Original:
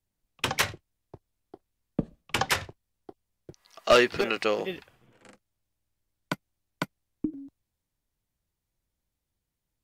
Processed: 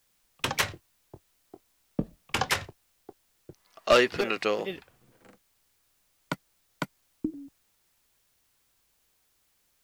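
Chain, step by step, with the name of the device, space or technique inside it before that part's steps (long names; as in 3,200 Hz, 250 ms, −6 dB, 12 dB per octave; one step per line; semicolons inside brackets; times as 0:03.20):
plain cassette with noise reduction switched in (one half of a high-frequency compander decoder only; tape wow and flutter; white noise bed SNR 37 dB)
0:00.68–0:02.51: double-tracking delay 23 ms −12 dB
level −1 dB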